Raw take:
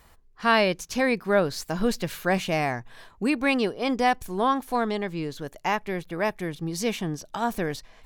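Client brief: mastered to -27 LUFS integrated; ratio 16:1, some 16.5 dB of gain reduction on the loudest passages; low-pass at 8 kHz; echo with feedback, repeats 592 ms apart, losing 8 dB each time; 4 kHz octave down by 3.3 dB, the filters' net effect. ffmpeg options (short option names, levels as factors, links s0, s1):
-af "lowpass=8000,equalizer=f=4000:t=o:g=-4.5,acompressor=threshold=0.0224:ratio=16,aecho=1:1:592|1184|1776|2368|2960:0.398|0.159|0.0637|0.0255|0.0102,volume=3.55"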